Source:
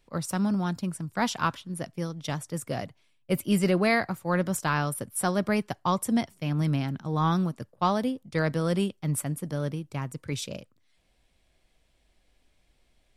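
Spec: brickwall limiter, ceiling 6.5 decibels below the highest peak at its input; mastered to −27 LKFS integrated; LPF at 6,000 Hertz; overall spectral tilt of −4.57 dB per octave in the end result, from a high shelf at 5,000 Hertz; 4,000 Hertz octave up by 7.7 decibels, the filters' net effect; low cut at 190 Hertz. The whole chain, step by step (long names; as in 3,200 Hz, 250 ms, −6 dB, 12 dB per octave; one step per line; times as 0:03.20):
high-pass filter 190 Hz
low-pass filter 6,000 Hz
parametric band 4,000 Hz +9 dB
high-shelf EQ 5,000 Hz +3.5 dB
level +3.5 dB
brickwall limiter −11.5 dBFS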